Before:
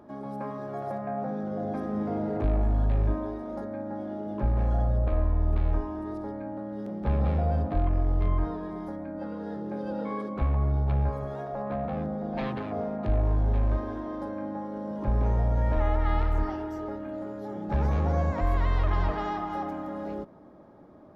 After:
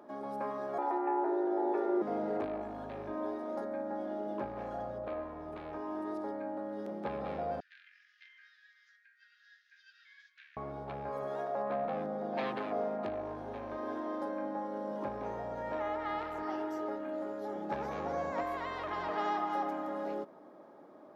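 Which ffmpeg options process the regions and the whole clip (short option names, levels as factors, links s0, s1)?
-filter_complex "[0:a]asettb=1/sr,asplit=3[s0][s1][s2];[s0]atrim=end=0.784[s3];[s1]atrim=start=0.78:end=2.02,asetpts=PTS-STARTPTS,afade=t=in:d=0.004:c=qsin,afade=t=out:st=1.236:d=0.004:c=qsin,bass=f=250:g=5,treble=f=4000:g=-10,aecho=1:1:4.6:0.41,atrim=end_sample=54684,afreqshift=150[s4];[s2]atrim=start=2.016[s5];[s3][s4]acrossfade=d=0.004:c1=hsin:c2=qsin[s6];[s6][s5]acrossfade=d=0.004:c1=qsin:c2=hsin,asettb=1/sr,asplit=3[s7][s8][s9];[s7]atrim=end=7.604[s10];[s8]atrim=start=7.6:end=10.57,asetpts=PTS-STARTPTS,afade=t=in:d=0.004:c=qsin,afade=t=out:st=2.966:d=0.004:c=qsin,asuperpass=centerf=3400:order=20:qfactor=0.63,bandreject=f=2200:w=17,flanger=delay=5.4:depth=6.1:regen=66:speed=1.8:shape=sinusoidal[s11];[s9]atrim=start=10.566[s12];[s10][s11]acrossfade=d=0.004:c1=hsin:c2=qsin[s13];[s13][s12]acrossfade=d=0.004:c1=qsin:c2=hsin,acompressor=threshold=0.0447:ratio=2,highpass=340"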